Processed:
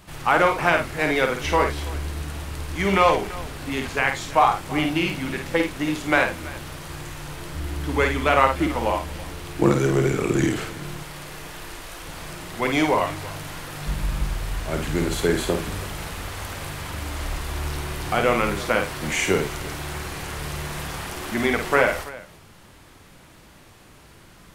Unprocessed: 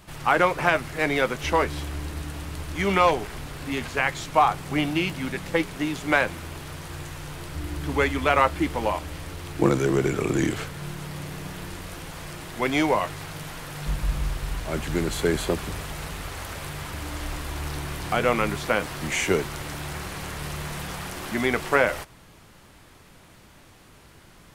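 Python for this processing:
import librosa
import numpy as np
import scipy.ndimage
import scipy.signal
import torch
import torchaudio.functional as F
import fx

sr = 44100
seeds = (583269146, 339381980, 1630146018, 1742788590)

y = fx.peak_eq(x, sr, hz=160.0, db=-9.5, octaves=2.1, at=(11.03, 12.06))
y = fx.echo_multitap(y, sr, ms=(52, 82, 332), db=(-5.5, -16.5, -18.5))
y = y * 10.0 ** (1.0 / 20.0)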